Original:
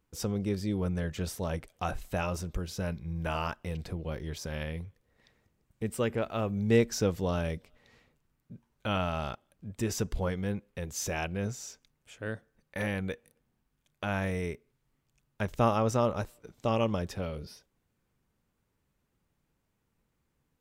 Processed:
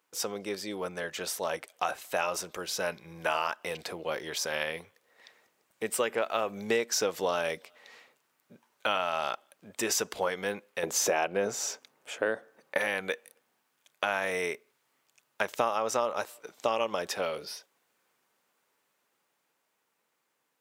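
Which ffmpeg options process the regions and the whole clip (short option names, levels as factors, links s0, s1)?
-filter_complex "[0:a]asettb=1/sr,asplit=3[s0][s1][s2];[s0]atrim=end=10.834[s3];[s1]atrim=start=10.83:end=12.78,asetpts=PTS-STARTPTS,afade=t=in:d=0.004:c=qsin,afade=t=out:st=1.946:d=0.004:c=qsin,tiltshelf=f=1100:g=7,acontrast=59,highpass=f=210:p=1[s4];[s2]atrim=start=12.776[s5];[s3][s4]acrossfade=d=0.004:c1=hsin:c2=qsin[s6];[s6][s5]acrossfade=d=0.004:c1=qsin:c2=hsin,dynaudnorm=f=360:g=13:m=1.58,highpass=580,acompressor=threshold=0.0282:ratio=5,volume=2.11"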